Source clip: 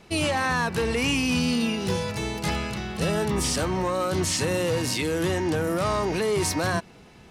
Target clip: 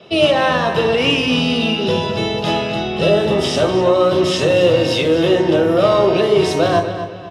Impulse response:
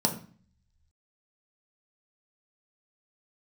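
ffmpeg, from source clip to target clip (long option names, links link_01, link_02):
-filter_complex "[0:a]acrossover=split=300 4900:gain=0.141 1 0.178[link_01][link_02][link_03];[link_01][link_02][link_03]amix=inputs=3:normalize=0,asplit=2[link_04][link_05];[link_05]adelay=249,lowpass=frequency=4400:poles=1,volume=-9.5dB,asplit=2[link_06][link_07];[link_07]adelay=249,lowpass=frequency=4400:poles=1,volume=0.35,asplit=2[link_08][link_09];[link_09]adelay=249,lowpass=frequency=4400:poles=1,volume=0.35,asplit=2[link_10][link_11];[link_11]adelay=249,lowpass=frequency=4400:poles=1,volume=0.35[link_12];[link_04][link_06][link_08][link_10][link_12]amix=inputs=5:normalize=0[link_13];[1:a]atrim=start_sample=2205,asetrate=29547,aresample=44100[link_14];[link_13][link_14]afir=irnorm=-1:irlink=0,volume=-2dB"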